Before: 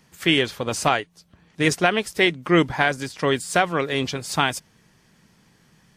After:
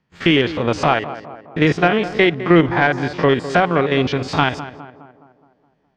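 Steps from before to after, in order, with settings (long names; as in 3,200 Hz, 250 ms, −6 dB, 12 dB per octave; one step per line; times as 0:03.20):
spectrum averaged block by block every 50 ms
noise gate −52 dBFS, range −22 dB
high-shelf EQ 9,200 Hz −9 dB
in parallel at +3 dB: downward compressor, threshold −29 dBFS, peak gain reduction 14.5 dB
on the sum: soft clipping −5.5 dBFS, distortion −22 dB
high-frequency loss of the air 190 metres
tape delay 208 ms, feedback 58%, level −11.5 dB, low-pass 1,500 Hz
level +5 dB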